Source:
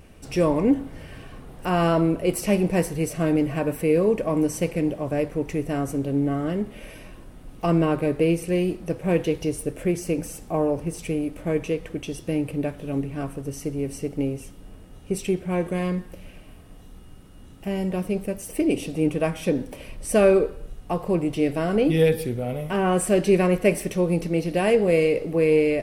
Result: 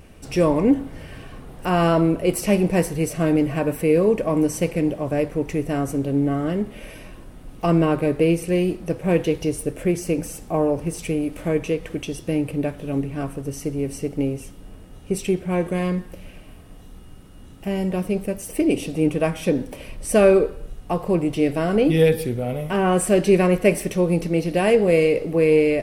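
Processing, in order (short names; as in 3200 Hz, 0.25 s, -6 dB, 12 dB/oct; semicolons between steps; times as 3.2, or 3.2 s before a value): 10.56–12.05 mismatched tape noise reduction encoder only; gain +2.5 dB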